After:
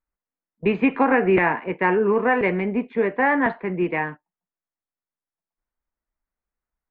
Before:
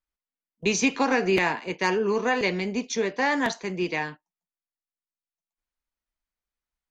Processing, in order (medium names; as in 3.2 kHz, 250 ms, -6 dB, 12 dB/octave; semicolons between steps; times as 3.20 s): wow and flutter 23 cents; inverse Chebyshev low-pass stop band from 5.4 kHz, stop band 50 dB; tape noise reduction on one side only decoder only; trim +5 dB